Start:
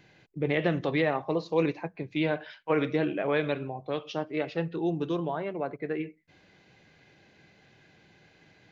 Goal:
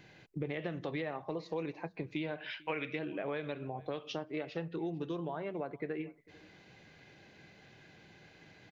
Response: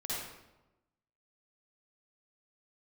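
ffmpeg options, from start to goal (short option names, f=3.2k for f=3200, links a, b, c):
-filter_complex "[0:a]asettb=1/sr,asplit=3[a][b][c];[a]atrim=end=2.384[d];[b]atrim=start=2.38:end=2.99,asetpts=PTS-STARTPTS,afade=t=in:d=0.004:c=qsin,afade=t=out:st=0.606:d=0.004:c=qsin,equalizer=f=2.5k:t=o:w=0.89:g=14[e];[c]atrim=start=2.986[f];[d][e]acrossfade=d=0.004:c1=hsin:c2=qsin[g];[g][f]acrossfade=d=0.004:c1=qsin:c2=hsin,acompressor=threshold=-36dB:ratio=6,aecho=1:1:448:0.0668,volume=1dB"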